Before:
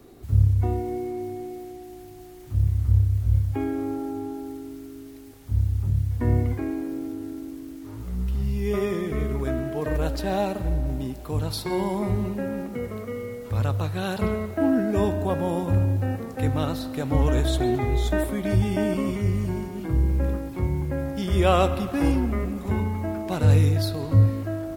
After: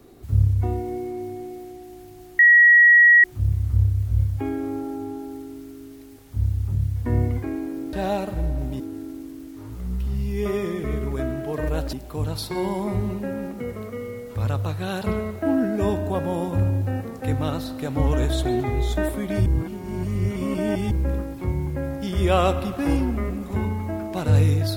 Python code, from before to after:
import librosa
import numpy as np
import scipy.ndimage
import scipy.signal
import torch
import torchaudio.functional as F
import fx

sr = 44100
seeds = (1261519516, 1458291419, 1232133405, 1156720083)

y = fx.edit(x, sr, fx.insert_tone(at_s=2.39, length_s=0.85, hz=1910.0, db=-9.0),
    fx.move(start_s=10.21, length_s=0.87, to_s=7.08),
    fx.reverse_span(start_s=18.61, length_s=1.45), tone=tone)